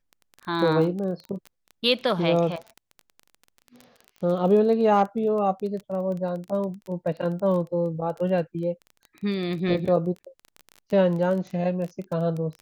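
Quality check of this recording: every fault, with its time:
crackle 19/s -31 dBFS

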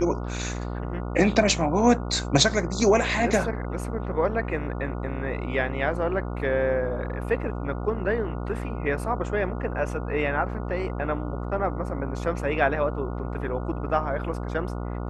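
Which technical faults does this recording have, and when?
buzz 60 Hz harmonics 24 -31 dBFS

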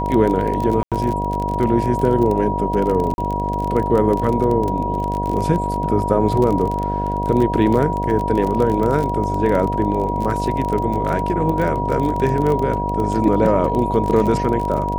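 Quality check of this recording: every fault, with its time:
buzz 50 Hz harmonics 15 -24 dBFS
crackle 27/s -21 dBFS
tone 960 Hz -22 dBFS
0.83–0.92 gap 87 ms
3.14–3.18 gap 41 ms

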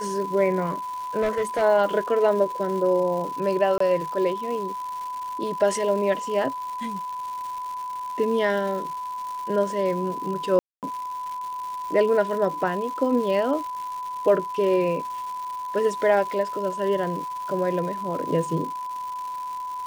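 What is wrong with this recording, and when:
crackle 350/s -33 dBFS
tone 1000 Hz -29 dBFS
1.21–1.63 clipped -19.5 dBFS
3.78–3.8 gap 24 ms
10.59–10.83 gap 0.238 s

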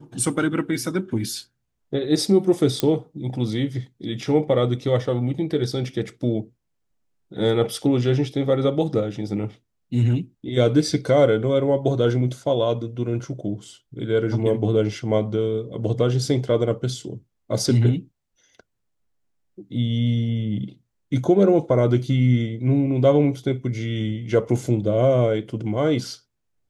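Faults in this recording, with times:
2.8 pop -6 dBFS

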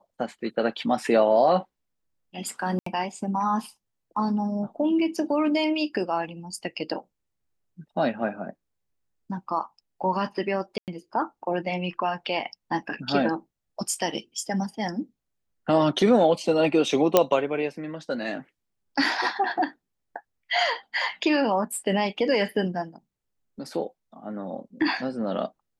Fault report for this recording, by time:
2.79–2.86 gap 74 ms
10.78–10.88 gap 98 ms
17.17 pop -3 dBFS

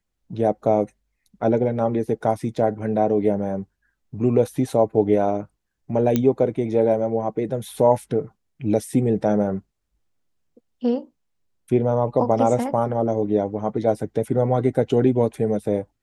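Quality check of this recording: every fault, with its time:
6.16 pop -7 dBFS

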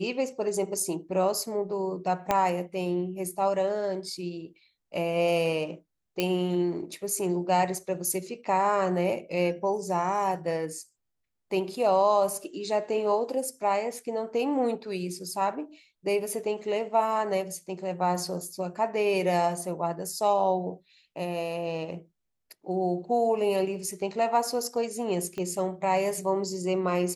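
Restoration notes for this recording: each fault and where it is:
2.31 pop -10 dBFS
6.2 pop -11 dBFS
25.38 pop -22 dBFS

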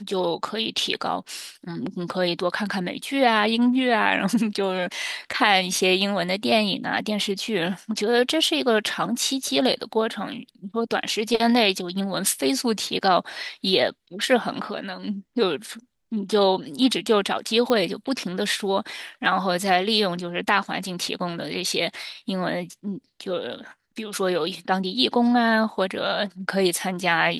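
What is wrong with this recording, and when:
17.7 pop -10 dBFS

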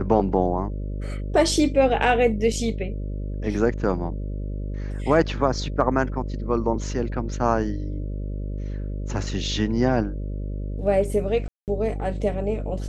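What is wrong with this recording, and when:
buzz 50 Hz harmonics 12 -29 dBFS
11.48–11.68 gap 0.198 s

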